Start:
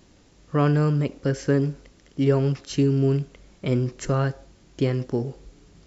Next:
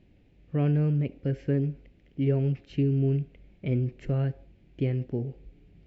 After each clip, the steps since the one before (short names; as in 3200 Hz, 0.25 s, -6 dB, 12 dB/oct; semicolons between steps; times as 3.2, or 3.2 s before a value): EQ curve 120 Hz 0 dB, 740 Hz -8 dB, 1100 Hz -20 dB, 2400 Hz -3 dB, 6200 Hz -27 dB; gain -2 dB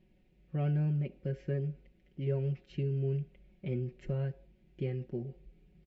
comb 5.4 ms, depth 73%; gain -8.5 dB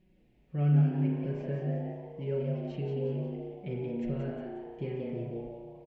frequency-shifting echo 0.179 s, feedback 44%, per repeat +110 Hz, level -5.5 dB; spring tank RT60 1.2 s, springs 34 ms, chirp 25 ms, DRR 0.5 dB; gain -1.5 dB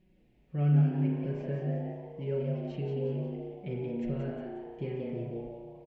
nothing audible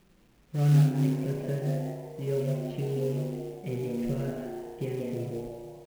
companded quantiser 6-bit; gain +3 dB